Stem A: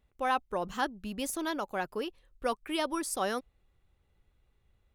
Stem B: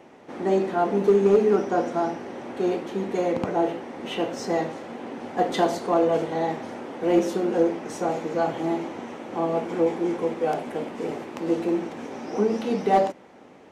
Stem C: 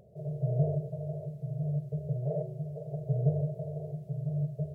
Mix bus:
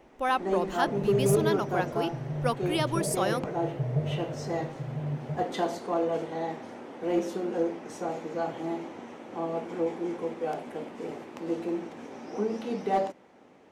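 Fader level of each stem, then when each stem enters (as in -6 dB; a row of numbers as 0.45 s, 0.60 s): +2.5 dB, -7.0 dB, -1.0 dB; 0.00 s, 0.00 s, 0.70 s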